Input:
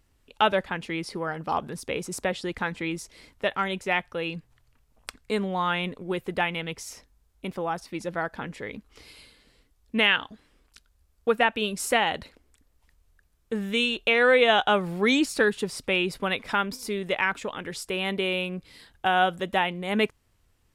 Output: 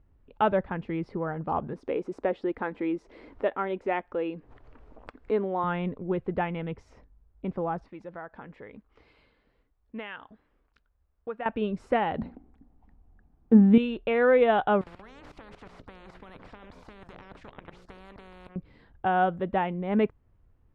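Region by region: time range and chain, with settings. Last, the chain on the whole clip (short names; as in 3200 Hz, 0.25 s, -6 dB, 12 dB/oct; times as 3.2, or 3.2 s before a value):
1.73–5.64 resonant low shelf 210 Hz -12 dB, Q 1.5 + upward compressor, threshold -34 dBFS
7.88–11.46 low shelf 410 Hz -12 dB + compressor 1.5:1, threshold -42 dBFS
12.18–13.78 notches 60/120/180/240/300 Hz + small resonant body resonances 240/760 Hz, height 15 dB, ringing for 25 ms
14.81–18.56 notches 60/120/180/240/300/360/420/480/540/600 Hz + level quantiser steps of 17 dB + spectral compressor 10:1
whole clip: Bessel low-pass 1000 Hz, order 2; low shelf 180 Hz +5.5 dB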